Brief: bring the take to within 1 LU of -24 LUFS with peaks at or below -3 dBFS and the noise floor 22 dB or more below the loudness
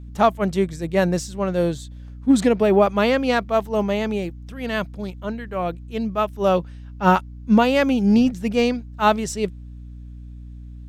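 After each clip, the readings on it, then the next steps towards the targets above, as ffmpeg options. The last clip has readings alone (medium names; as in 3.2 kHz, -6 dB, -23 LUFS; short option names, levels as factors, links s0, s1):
hum 60 Hz; highest harmonic 300 Hz; hum level -34 dBFS; loudness -21.0 LUFS; peak level -4.5 dBFS; loudness target -24.0 LUFS
-> -af "bandreject=f=60:t=h:w=4,bandreject=f=120:t=h:w=4,bandreject=f=180:t=h:w=4,bandreject=f=240:t=h:w=4,bandreject=f=300:t=h:w=4"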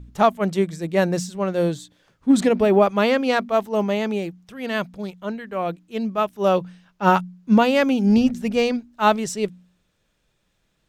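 hum not found; loudness -21.0 LUFS; peak level -4.0 dBFS; loudness target -24.0 LUFS
-> -af "volume=0.708"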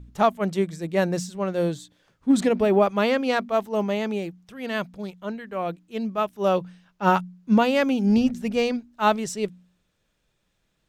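loudness -24.0 LUFS; peak level -7.0 dBFS; noise floor -72 dBFS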